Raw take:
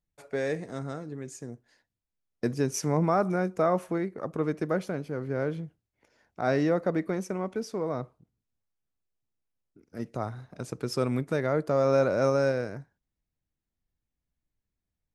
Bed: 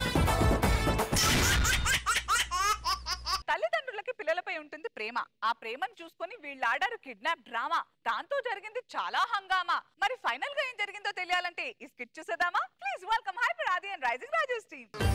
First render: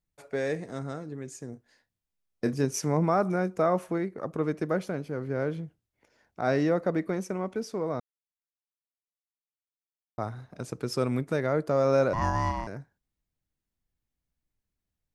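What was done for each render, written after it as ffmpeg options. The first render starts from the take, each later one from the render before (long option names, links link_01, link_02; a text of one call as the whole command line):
ffmpeg -i in.wav -filter_complex "[0:a]asettb=1/sr,asplit=3[link_01][link_02][link_03];[link_01]atrim=end=1.504[link_04];[link_02]atrim=start=1.5:end=2.65,asetpts=PTS-STARTPTS,afade=type=in:duration=0.004:curve=qsin,afade=type=out:start_time=1.146:duration=0.004:curve=qsin,asplit=2[link_05][link_06];[link_06]adelay=29,volume=-9.5dB[link_07];[link_05][link_07]amix=inputs=2:normalize=0,atrim=end_sample=50715[link_08];[link_03]atrim=start=2.646[link_09];[link_04][link_08]acrossfade=duration=0.004:curve1=hsin:curve2=qsin[link_10];[link_10][link_09]acrossfade=duration=0.004:curve1=qsin:curve2=hsin,asettb=1/sr,asplit=3[link_11][link_12][link_13];[link_11]atrim=end=12.134[link_14];[link_12]atrim=start=12.13:end=12.67,asetpts=PTS-STARTPTS,afade=type=in:duration=0.004:curve=qsin,afade=type=out:start_time=0.536:duration=0.004:curve=qsin,aeval=exprs='val(0)*sin(2*PI*450*n/s)':channel_layout=same[link_15];[link_13]atrim=start=12.666[link_16];[link_14][link_15]acrossfade=duration=0.004:curve1=hsin:curve2=qsin[link_17];[link_17][link_16]acrossfade=duration=0.004:curve1=qsin:curve2=hsin,asplit=3[link_18][link_19][link_20];[link_18]atrim=end=8,asetpts=PTS-STARTPTS,afade=type=out:start_time=7.996:duration=0.004:curve=hsin[link_21];[link_19]atrim=start=8:end=10.18,asetpts=PTS-STARTPTS,volume=0[link_22];[link_20]atrim=start=10.18,asetpts=PTS-STARTPTS,afade=type=in:duration=0.004:curve=hsin[link_23];[link_21][link_22][link_23]concat=n=3:v=0:a=1" out.wav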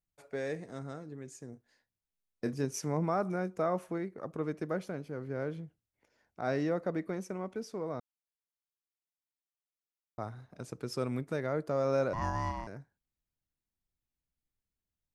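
ffmpeg -i in.wav -af "volume=-6.5dB" out.wav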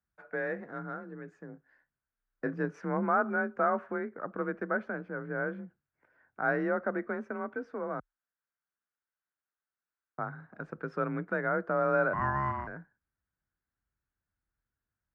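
ffmpeg -i in.wav -af "lowpass=frequency=1500:width_type=q:width=4.4,afreqshift=31" out.wav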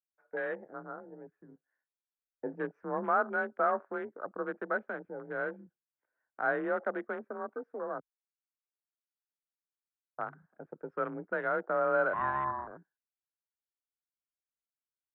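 ffmpeg -i in.wav -filter_complex "[0:a]afwtdn=0.0126,acrossover=split=320 2400:gain=0.224 1 0.158[link_01][link_02][link_03];[link_01][link_02][link_03]amix=inputs=3:normalize=0" out.wav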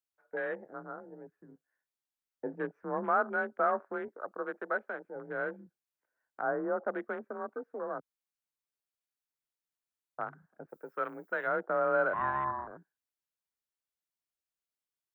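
ffmpeg -i in.wav -filter_complex "[0:a]asettb=1/sr,asplit=3[link_01][link_02][link_03];[link_01]atrim=end=4.084[link_04];[link_02]atrim=start=4.08:end=5.16,asetpts=PTS-STARTPTS,afade=type=in:duration=0.004:curve=qsin,afade=type=out:start_time=1.076:duration=0.004:curve=qsin,bass=frequency=250:gain=-12,treble=frequency=4000:gain=2[link_05];[link_03]atrim=start=5.156[link_06];[link_04][link_05]acrossfade=duration=0.004:curve1=hsin:curve2=qsin[link_07];[link_07][link_06]acrossfade=duration=0.004:curve1=qsin:curve2=hsin,asettb=1/sr,asplit=3[link_08][link_09][link_10];[link_08]atrim=end=6.424[link_11];[link_09]atrim=start=6.42:end=6.88,asetpts=PTS-STARTPTS,afade=type=in:duration=0.004:curve=qsin,afade=type=out:start_time=0.456:duration=0.004:curve=qsin,lowpass=frequency=1300:width=0.5412,lowpass=frequency=1300:width=1.3066[link_12];[link_10]atrim=start=6.876[link_13];[link_11][link_12]acrossfade=duration=0.004:curve1=hsin:curve2=qsin[link_14];[link_14][link_13]acrossfade=duration=0.004:curve1=qsin:curve2=hsin,asplit=3[link_15][link_16][link_17];[link_15]afade=type=out:start_time=10.68:duration=0.02[link_18];[link_16]aemphasis=mode=production:type=riaa,afade=type=in:start_time=10.68:duration=0.02,afade=type=out:start_time=11.46:duration=0.02[link_19];[link_17]afade=type=in:start_time=11.46:duration=0.02[link_20];[link_18][link_19][link_20]amix=inputs=3:normalize=0" out.wav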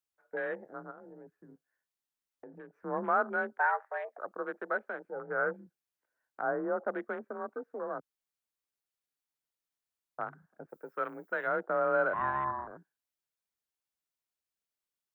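ffmpeg -i in.wav -filter_complex "[0:a]asplit=3[link_01][link_02][link_03];[link_01]afade=type=out:start_time=0.9:duration=0.02[link_04];[link_02]acompressor=threshold=-46dB:ratio=6:attack=3.2:release=140:knee=1:detection=peak,afade=type=in:start_time=0.9:duration=0.02,afade=type=out:start_time=2.72:duration=0.02[link_05];[link_03]afade=type=in:start_time=2.72:duration=0.02[link_06];[link_04][link_05][link_06]amix=inputs=3:normalize=0,asplit=3[link_07][link_08][link_09];[link_07]afade=type=out:start_time=3.57:duration=0.02[link_10];[link_08]afreqshift=230,afade=type=in:start_time=3.57:duration=0.02,afade=type=out:start_time=4.17:duration=0.02[link_11];[link_09]afade=type=in:start_time=4.17:duration=0.02[link_12];[link_10][link_11][link_12]amix=inputs=3:normalize=0,asplit=3[link_13][link_14][link_15];[link_13]afade=type=out:start_time=5.11:duration=0.02[link_16];[link_14]highpass=180,equalizer=frequency=190:width_type=q:width=4:gain=9,equalizer=frequency=290:width_type=q:width=4:gain=-5,equalizer=frequency=480:width_type=q:width=4:gain=5,equalizer=frequency=800:width_type=q:width=4:gain=5,equalizer=frequency=1300:width_type=q:width=4:gain=10,lowpass=frequency=2200:width=0.5412,lowpass=frequency=2200:width=1.3066,afade=type=in:start_time=5.11:duration=0.02,afade=type=out:start_time=5.52:duration=0.02[link_17];[link_15]afade=type=in:start_time=5.52:duration=0.02[link_18];[link_16][link_17][link_18]amix=inputs=3:normalize=0" out.wav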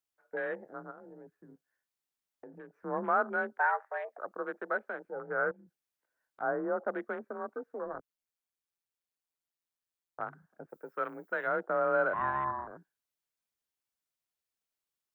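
ffmpeg -i in.wav -filter_complex "[0:a]asettb=1/sr,asplit=3[link_01][link_02][link_03];[link_01]atrim=end=5.514[link_04];[link_02]atrim=start=5.51:end=6.41,asetpts=PTS-STARTPTS,afade=type=in:duration=0.004:curve=qsin,afade=type=out:start_time=0.896:duration=0.004:curve=qsin,acompressor=threshold=-55dB:ratio=3:attack=3.2:release=140:knee=1:detection=peak[link_05];[link_03]atrim=start=6.406[link_06];[link_04][link_05]acrossfade=duration=0.004:curve1=hsin:curve2=qsin[link_07];[link_07][link_06]acrossfade=duration=0.004:curve1=qsin:curve2=hsin,asplit=3[link_08][link_09][link_10];[link_08]afade=type=out:start_time=7.84:duration=0.02[link_11];[link_09]tremolo=f=170:d=0.824,afade=type=in:start_time=7.84:duration=0.02,afade=type=out:start_time=10.2:duration=0.02[link_12];[link_10]afade=type=in:start_time=10.2:duration=0.02[link_13];[link_11][link_12][link_13]amix=inputs=3:normalize=0" out.wav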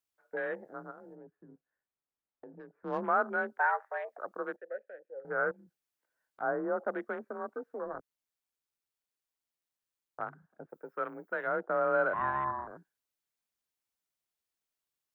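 ffmpeg -i in.wav -filter_complex "[0:a]asettb=1/sr,asplit=3[link_01][link_02][link_03];[link_01]atrim=end=1.154[link_04];[link_02]atrim=start=1.15:end=3.01,asetpts=PTS-STARTPTS,afade=type=in:duration=0.004:curve=qsin,afade=type=out:start_time=1.856:duration=0.004:curve=qsin,adynamicsmooth=sensitivity=7:basefreq=1900[link_05];[link_03]atrim=start=3.006[link_06];[link_04][link_05]acrossfade=duration=0.004:curve1=hsin:curve2=qsin[link_07];[link_07][link_06]acrossfade=duration=0.004:curve1=qsin:curve2=hsin,asettb=1/sr,asplit=3[link_08][link_09][link_10];[link_08]atrim=end=4.564[link_11];[link_09]atrim=start=4.56:end=5.25,asetpts=PTS-STARTPTS,afade=type=in:duration=0.004:curve=qsin,afade=type=out:start_time=0.686:duration=0.004:curve=qsin,asplit=3[link_12][link_13][link_14];[link_12]bandpass=frequency=530:width_type=q:width=8,volume=0dB[link_15];[link_13]bandpass=frequency=1840:width_type=q:width=8,volume=-6dB[link_16];[link_14]bandpass=frequency=2480:width_type=q:width=8,volume=-9dB[link_17];[link_15][link_16][link_17]amix=inputs=3:normalize=0[link_18];[link_10]atrim=start=5.246[link_19];[link_11][link_18]acrossfade=duration=0.004:curve1=hsin:curve2=qsin[link_20];[link_20][link_19]acrossfade=duration=0.004:curve1=qsin:curve2=hsin,asettb=1/sr,asplit=3[link_21][link_22][link_23];[link_21]atrim=end=10.304[link_24];[link_22]atrim=start=10.3:end=11.7,asetpts=PTS-STARTPTS,afade=type=in:duration=0.004:curve=qsin,afade=type=out:start_time=1.396:duration=0.004:curve=qsin,highshelf=frequency=2600:gain=-6.5[link_25];[link_23]atrim=start=11.696[link_26];[link_24][link_25]acrossfade=duration=0.004:curve1=hsin:curve2=qsin[link_27];[link_27][link_26]acrossfade=duration=0.004:curve1=qsin:curve2=hsin" out.wav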